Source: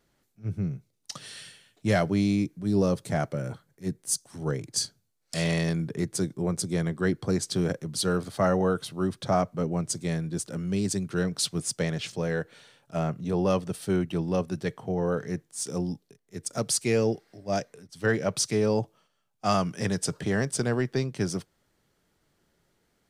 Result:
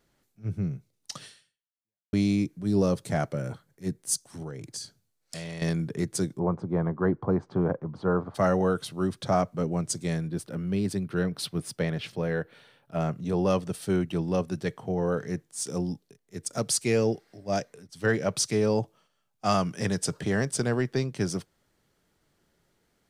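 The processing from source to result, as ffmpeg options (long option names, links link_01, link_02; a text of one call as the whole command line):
ffmpeg -i in.wav -filter_complex "[0:a]asettb=1/sr,asplit=3[link_01][link_02][link_03];[link_01]atrim=end=4.424[link_04];[link_02]atrim=start=4.42:end=5.62,asetpts=PTS-STARTPTS,afade=type=in:duration=0.004:curve=qsin,afade=type=out:start_time=1.196:duration=0.004:curve=qsin,acompressor=threshold=-34dB:ratio=6:attack=3.2:release=140:knee=1:detection=peak[link_05];[link_03]atrim=start=5.616[link_06];[link_04][link_05]acrossfade=duration=0.004:curve1=hsin:curve2=qsin[link_07];[link_07][link_06]acrossfade=duration=0.004:curve1=qsin:curve2=hsin,asplit=3[link_08][link_09][link_10];[link_08]afade=type=out:start_time=6.38:duration=0.02[link_11];[link_09]lowpass=frequency=1000:width_type=q:width=2.8,afade=type=in:start_time=6.38:duration=0.02,afade=type=out:start_time=8.34:duration=0.02[link_12];[link_10]afade=type=in:start_time=8.34:duration=0.02[link_13];[link_11][link_12][link_13]amix=inputs=3:normalize=0,asettb=1/sr,asplit=3[link_14][link_15][link_16];[link_14]atrim=end=10.284[link_17];[link_15]atrim=start=10.28:end=13,asetpts=PTS-STARTPTS,afade=type=in:duration=0.004:curve=qsin,afade=type=out:start_time=2.716:duration=0.004:curve=qsin,equalizer=frequency=7000:width=1.2:gain=-13.5[link_18];[link_16]atrim=start=12.996[link_19];[link_17][link_18]acrossfade=duration=0.004:curve1=hsin:curve2=qsin[link_20];[link_20][link_19]acrossfade=duration=0.004:curve1=qsin:curve2=hsin,asplit=2[link_21][link_22];[link_21]atrim=end=2.13,asetpts=PTS-STARTPTS,afade=type=out:start_time=1.23:duration=0.9:curve=exp[link_23];[link_22]atrim=start=2.13,asetpts=PTS-STARTPTS,afade=type=in:duration=0.004:curve=hsin[link_24];[link_23][link_24]concat=n=2:v=0:a=1" out.wav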